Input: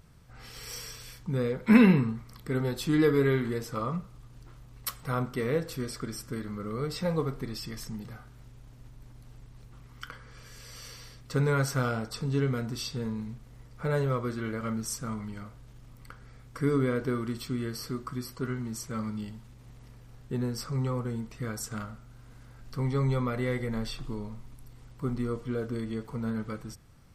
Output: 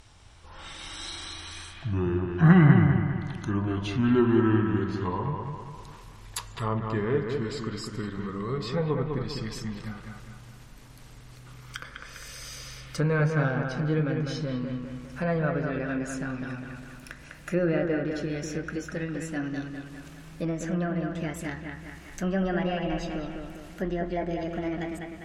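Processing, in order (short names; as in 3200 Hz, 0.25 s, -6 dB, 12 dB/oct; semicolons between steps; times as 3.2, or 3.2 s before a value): speed glide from 66% -> 149%; on a send: analogue delay 0.201 s, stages 4096, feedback 45%, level -5 dB; on the sum: treble ducked by the level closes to 2800 Hz, closed at -25.5 dBFS; mismatched tape noise reduction encoder only; gain +1 dB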